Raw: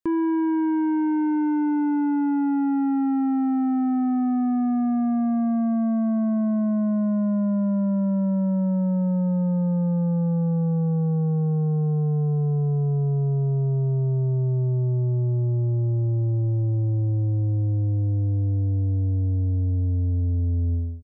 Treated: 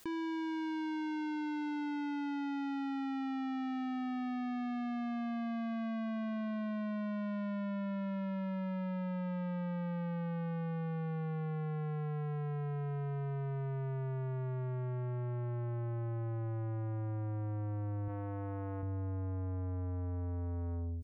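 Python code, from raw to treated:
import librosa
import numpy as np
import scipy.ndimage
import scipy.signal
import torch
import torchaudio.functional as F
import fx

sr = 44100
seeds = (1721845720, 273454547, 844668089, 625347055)

y = 10.0 ** (-30.5 / 20.0) * np.tanh(x / 10.0 ** (-30.5 / 20.0))
y = fx.low_shelf(y, sr, hz=230.0, db=-11.5, at=(18.08, 18.83))
y = fx.env_flatten(y, sr, amount_pct=70)
y = y * 10.0 ** (-6.0 / 20.0)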